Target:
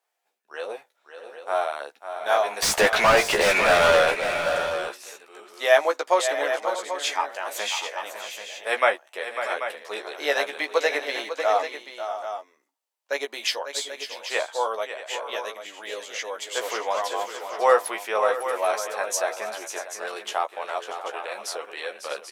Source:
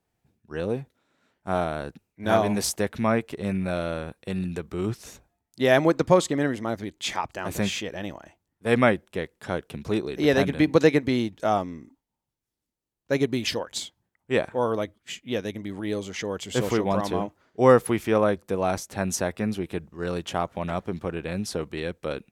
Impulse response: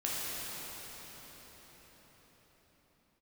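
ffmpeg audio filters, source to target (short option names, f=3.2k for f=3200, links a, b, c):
-filter_complex "[0:a]highpass=f=570:w=0.5412,highpass=f=570:w=1.3066,asettb=1/sr,asplit=3[a][b][c];[a]atrim=end=2.624[d];[b]atrim=start=2.62:end=4.15,asetpts=PTS-STARTPTS,afade=t=in:d=0.004:c=qsin,afade=t=out:st=1.526:d=0.004:c=qsin,asplit=2[e][f];[f]highpass=f=720:p=1,volume=35dB,asoftclip=type=tanh:threshold=-12dB[g];[e][g]amix=inputs=2:normalize=0,lowpass=f=2.9k:p=1,volume=-6dB[h];[c]atrim=start=4.146[i];[d][h]acrossfade=d=0.004:c1=hsin:c2=qsin[j];[j][i]acrossfade=d=0.004:c1=qsin:c2=hsin,asplit=2[k][l];[l]adelay=14,volume=-5.5dB[m];[k][m]amix=inputs=2:normalize=0,aecho=1:1:548|637|787:0.316|0.188|0.299,volume=1.5dB"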